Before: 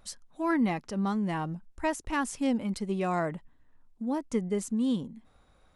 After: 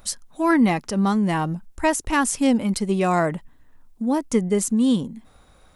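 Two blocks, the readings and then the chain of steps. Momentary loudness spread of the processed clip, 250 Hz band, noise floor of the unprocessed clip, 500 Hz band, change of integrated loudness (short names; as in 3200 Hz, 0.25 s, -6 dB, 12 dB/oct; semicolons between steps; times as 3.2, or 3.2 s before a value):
8 LU, +9.0 dB, -63 dBFS, +9.0 dB, +9.0 dB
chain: high shelf 7400 Hz +9.5 dB; gain +9 dB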